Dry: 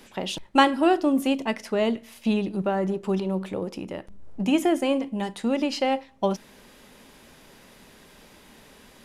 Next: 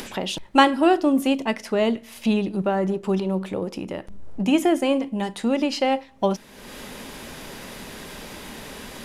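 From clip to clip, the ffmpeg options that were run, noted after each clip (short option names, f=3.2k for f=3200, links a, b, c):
-af "acompressor=mode=upward:threshold=-29dB:ratio=2.5,volume=2.5dB"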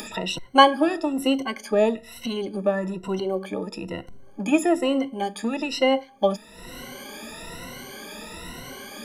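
-filter_complex "[0:a]afftfilt=real='re*pow(10,23/40*sin(2*PI*(2*log(max(b,1)*sr/1024/100)/log(2)-(1.1)*(pts-256)/sr)))':imag='im*pow(10,23/40*sin(2*PI*(2*log(max(b,1)*sr/1024/100)/log(2)-(1.1)*(pts-256)/sr)))':win_size=1024:overlap=0.75,acrossover=split=260|2500[a][b][c];[a]asoftclip=type=tanh:threshold=-26dB[d];[d][b][c]amix=inputs=3:normalize=0,volume=-5.5dB"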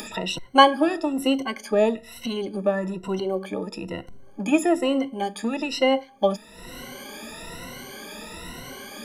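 -af anull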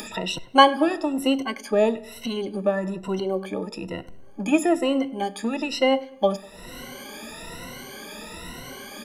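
-filter_complex "[0:a]asplit=2[a][b];[b]adelay=99,lowpass=f=3.1k:p=1,volume=-20.5dB,asplit=2[c][d];[d]adelay=99,lowpass=f=3.1k:p=1,volume=0.49,asplit=2[e][f];[f]adelay=99,lowpass=f=3.1k:p=1,volume=0.49,asplit=2[g][h];[h]adelay=99,lowpass=f=3.1k:p=1,volume=0.49[i];[a][c][e][g][i]amix=inputs=5:normalize=0"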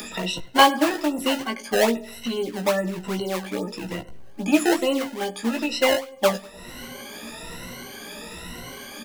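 -filter_complex "[0:a]acrossover=split=240|790|2500[a][b][c][d];[b]acrusher=samples=22:mix=1:aa=0.000001:lfo=1:lforange=35.2:lforate=2.4[e];[a][e][c][d]amix=inputs=4:normalize=0,asplit=2[f][g];[g]adelay=17,volume=-5dB[h];[f][h]amix=inputs=2:normalize=0"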